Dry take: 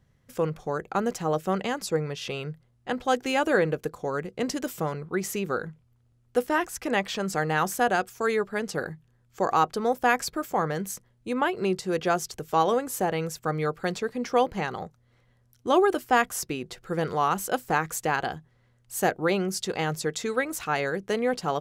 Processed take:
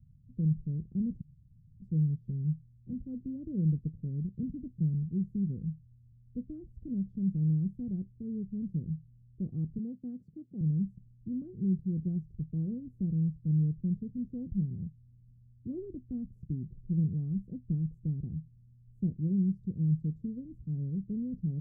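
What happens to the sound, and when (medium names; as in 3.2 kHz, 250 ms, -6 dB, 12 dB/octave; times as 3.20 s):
1.21–1.80 s: room tone
9.78–10.61 s: high-pass 210 Hz
whole clip: inverse Chebyshev low-pass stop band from 830 Hz, stop band 70 dB; trim +7 dB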